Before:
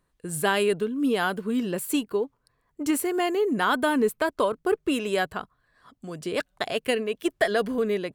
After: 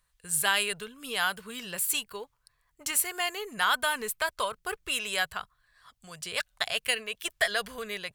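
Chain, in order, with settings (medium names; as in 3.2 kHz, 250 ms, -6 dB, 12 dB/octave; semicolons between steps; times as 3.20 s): amplifier tone stack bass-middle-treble 10-0-10; trim +6 dB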